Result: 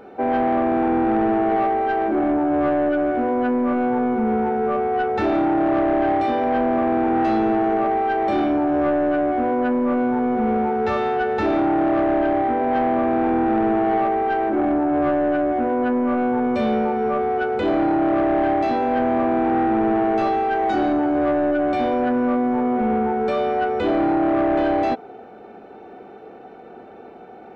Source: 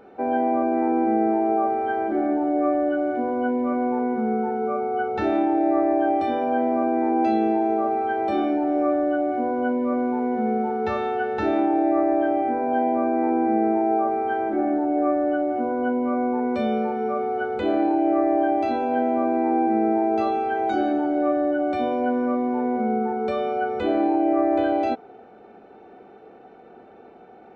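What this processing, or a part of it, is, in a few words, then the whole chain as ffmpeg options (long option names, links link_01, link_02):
saturation between pre-emphasis and de-emphasis: -af "highshelf=frequency=3000:gain=11,asoftclip=type=tanh:threshold=-20.5dB,highshelf=frequency=3000:gain=-11,volume=6dB"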